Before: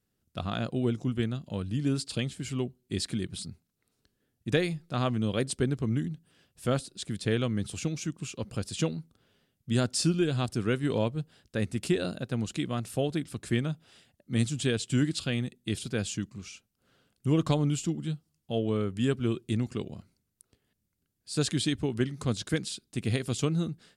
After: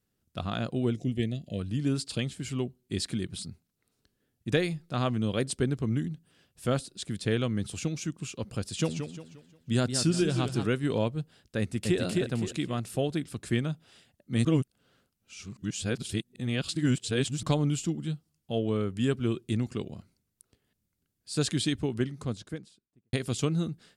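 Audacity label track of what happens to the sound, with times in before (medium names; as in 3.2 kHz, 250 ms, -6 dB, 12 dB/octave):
0.950000	1.600000	time-frequency box 740–1700 Hz -20 dB
8.650000	10.670000	modulated delay 176 ms, feedback 38%, depth 156 cents, level -8 dB
11.590000	12.000000	echo throw 260 ms, feedback 35%, level -2 dB
14.450000	17.430000	reverse
21.730000	23.130000	studio fade out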